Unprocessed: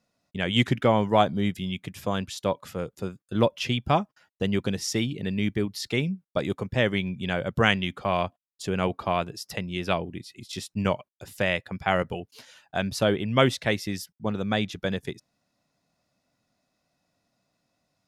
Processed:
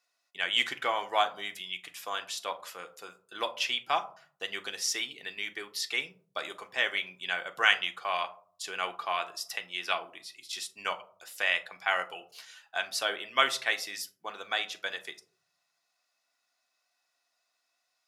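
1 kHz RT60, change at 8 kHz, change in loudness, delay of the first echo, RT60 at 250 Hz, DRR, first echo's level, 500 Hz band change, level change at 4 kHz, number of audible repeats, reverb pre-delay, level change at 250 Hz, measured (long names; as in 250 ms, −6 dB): 0.45 s, +1.0 dB, −4.5 dB, no echo audible, 0.75 s, 6.0 dB, no echo audible, −12.0 dB, +0.5 dB, no echo audible, 3 ms, −25.0 dB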